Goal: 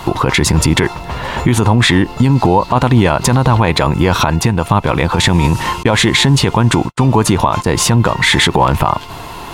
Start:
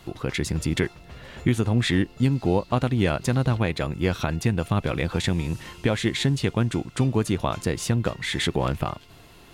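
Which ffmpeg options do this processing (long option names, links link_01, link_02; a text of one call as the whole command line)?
ffmpeg -i in.wav -filter_complex "[0:a]asettb=1/sr,asplit=3[link_01][link_02][link_03];[link_01]atrim=end=4.144[link_04];[link_02]atrim=start=4.14:end=5.19,asetpts=PTS-STARTPTS,afade=type=in:duration=0.004:curve=qsin,afade=type=out:start_time=1.046:duration=0.004:curve=qsin,acompressor=threshold=-28dB:ratio=4[link_05];[link_03]atrim=start=5.186[link_06];[link_04][link_05]acrossfade=duration=0.004:curve1=hsin:curve2=qsin[link_07];[link_07][link_06]acrossfade=duration=0.004:curve1=qsin:curve2=hsin,asettb=1/sr,asplit=3[link_08][link_09][link_10];[link_08]atrim=end=5.834[link_11];[link_09]atrim=start=5.83:end=7.7,asetpts=PTS-STARTPTS,afade=type=in:duration=0.004:curve=qsin,afade=type=out:start_time=1.866:duration=0.004:curve=qsin,agate=range=-53dB:threshold=-31dB:ratio=16:detection=peak[link_12];[link_10]atrim=start=7.696[link_13];[link_11][link_12]acrossfade=duration=0.004:curve1=hsin:curve2=qsin[link_14];[link_14][link_13]acrossfade=duration=0.004:curve1=qsin:curve2=hsin,equalizer=frequency=950:width_type=o:width=0.59:gain=13.5,alimiter=level_in=19.5dB:limit=-1dB:release=50:level=0:latency=1,volume=-1dB" out.wav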